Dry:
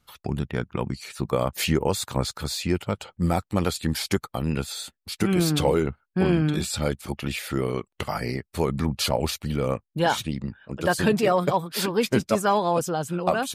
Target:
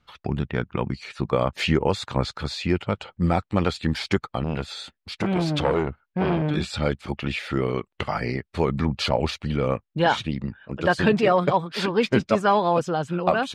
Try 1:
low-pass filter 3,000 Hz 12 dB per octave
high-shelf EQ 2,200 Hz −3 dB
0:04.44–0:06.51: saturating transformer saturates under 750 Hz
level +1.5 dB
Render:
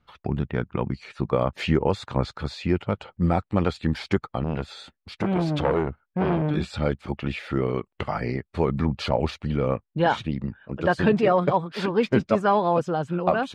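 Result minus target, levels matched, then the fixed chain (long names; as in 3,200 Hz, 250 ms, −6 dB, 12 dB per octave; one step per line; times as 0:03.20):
4,000 Hz band −5.5 dB
low-pass filter 3,000 Hz 12 dB per octave
high-shelf EQ 2,200 Hz +5.5 dB
0:04.44–0:06.51: saturating transformer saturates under 750 Hz
level +1.5 dB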